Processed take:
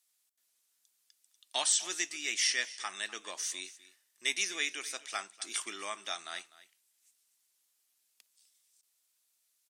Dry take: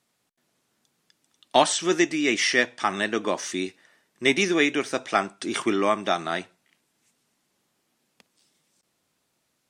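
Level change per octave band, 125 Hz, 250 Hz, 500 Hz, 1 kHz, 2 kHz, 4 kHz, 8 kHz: below −30 dB, −27.0 dB, −23.0 dB, −17.0 dB, −10.5 dB, −5.5 dB, −0.5 dB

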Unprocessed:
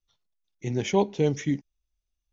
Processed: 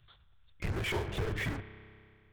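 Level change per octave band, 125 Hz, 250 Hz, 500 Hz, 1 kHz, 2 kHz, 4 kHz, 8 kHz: −5.5 dB, −13.5 dB, −13.0 dB, −9.5 dB, +2.5 dB, −2.5 dB, can't be measured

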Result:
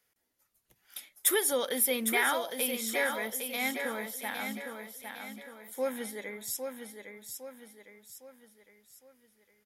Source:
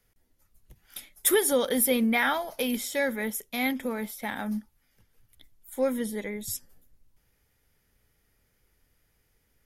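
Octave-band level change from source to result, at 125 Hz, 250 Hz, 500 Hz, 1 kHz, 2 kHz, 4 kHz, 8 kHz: below −10 dB, −9.5 dB, −5.0 dB, −2.5 dB, −1.5 dB, −1.0 dB, −1.0 dB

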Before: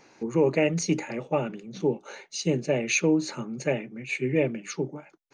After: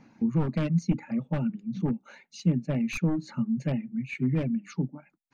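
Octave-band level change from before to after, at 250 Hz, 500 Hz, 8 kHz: +1.0, −12.0, −15.5 decibels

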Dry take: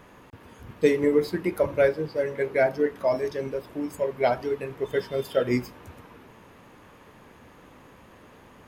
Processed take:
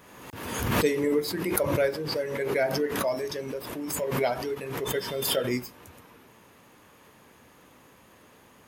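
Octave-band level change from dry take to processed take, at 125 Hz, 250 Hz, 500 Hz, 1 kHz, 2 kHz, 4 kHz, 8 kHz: +2.0 dB, −1.5 dB, −3.5 dB, −0.5 dB, 0.0 dB, +9.0 dB, can't be measured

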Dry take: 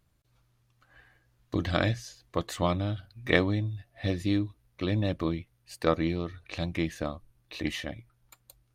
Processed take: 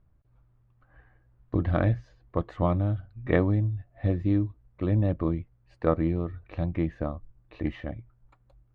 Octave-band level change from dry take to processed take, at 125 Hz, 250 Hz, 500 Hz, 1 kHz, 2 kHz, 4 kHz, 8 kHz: +5.0 dB, +2.0 dB, +1.0 dB, −0.5 dB, −6.0 dB, below −15 dB, below −25 dB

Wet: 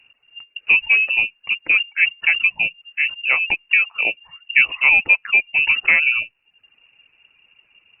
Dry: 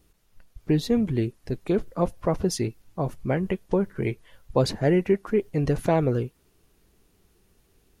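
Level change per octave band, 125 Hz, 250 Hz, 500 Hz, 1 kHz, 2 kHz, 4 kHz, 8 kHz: below −25 dB, below −20 dB, −17.0 dB, −1.5 dB, +27.0 dB, +14.0 dB, below −40 dB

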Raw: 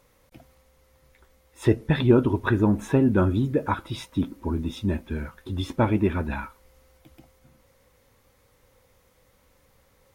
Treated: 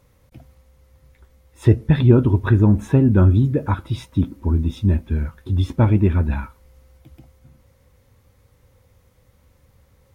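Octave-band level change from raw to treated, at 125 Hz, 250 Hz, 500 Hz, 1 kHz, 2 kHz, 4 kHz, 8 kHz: +10.5 dB, +4.0 dB, +1.5 dB, −0.5 dB, −1.0 dB, −1.0 dB, can't be measured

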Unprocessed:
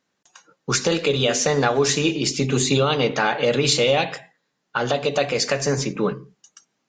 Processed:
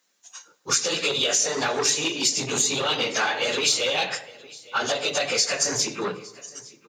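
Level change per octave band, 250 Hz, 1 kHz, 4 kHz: −10.0, −4.0, +1.0 decibels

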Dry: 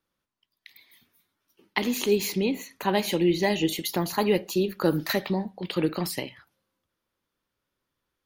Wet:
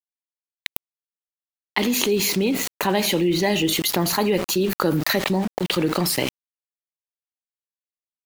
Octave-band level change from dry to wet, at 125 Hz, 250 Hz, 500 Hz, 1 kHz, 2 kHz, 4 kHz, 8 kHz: +5.0, +4.0, +3.0, +4.5, +6.0, +8.0, +10.0 decibels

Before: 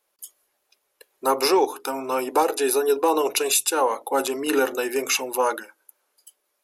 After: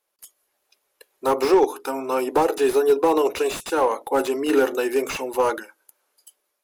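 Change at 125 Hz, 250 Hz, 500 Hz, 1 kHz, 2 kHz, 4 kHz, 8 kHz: can't be measured, +3.5 dB, +3.0 dB, 0.0 dB, −1.5 dB, −6.5 dB, −10.5 dB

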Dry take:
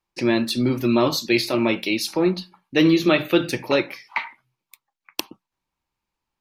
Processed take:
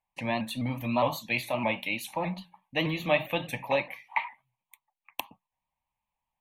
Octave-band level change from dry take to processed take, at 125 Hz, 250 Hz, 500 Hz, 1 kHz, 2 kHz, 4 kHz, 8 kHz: −7.0, −14.0, −9.0, −2.0, −5.5, −10.5, −12.0 decibels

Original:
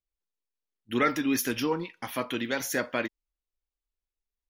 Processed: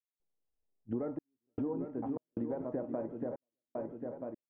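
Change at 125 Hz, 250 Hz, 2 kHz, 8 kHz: −4.5 dB, −6.5 dB, below −30 dB, below −40 dB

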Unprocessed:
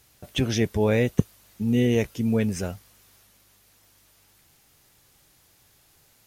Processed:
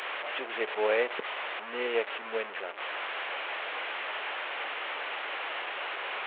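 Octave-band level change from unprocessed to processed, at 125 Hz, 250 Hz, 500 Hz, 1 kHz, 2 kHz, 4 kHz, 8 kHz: below −40 dB, −22.0 dB, −4.0 dB, +8.0 dB, +6.5 dB, +1.5 dB, below −30 dB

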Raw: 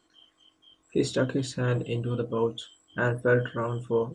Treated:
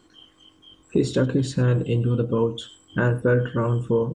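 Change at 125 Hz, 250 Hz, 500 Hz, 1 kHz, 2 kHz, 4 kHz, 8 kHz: +8.0, +6.5, +3.5, +2.0, +0.5, +2.0, +1.0 decibels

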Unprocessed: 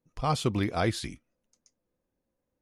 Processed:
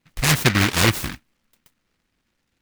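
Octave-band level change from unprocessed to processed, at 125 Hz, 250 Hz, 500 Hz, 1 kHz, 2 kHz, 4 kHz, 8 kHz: +9.5, +7.5, +4.0, +5.0, +17.0, +15.0, +17.5 decibels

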